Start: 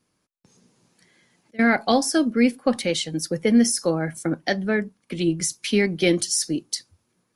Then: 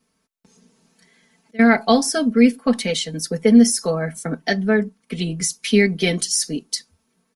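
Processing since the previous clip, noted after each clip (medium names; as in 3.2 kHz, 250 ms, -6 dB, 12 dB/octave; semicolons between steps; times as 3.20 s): comb 4.5 ms, depth 95%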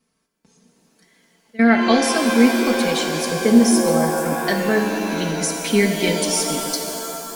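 pitch-shifted reverb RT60 2.9 s, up +7 st, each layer -2 dB, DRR 4.5 dB; trim -2 dB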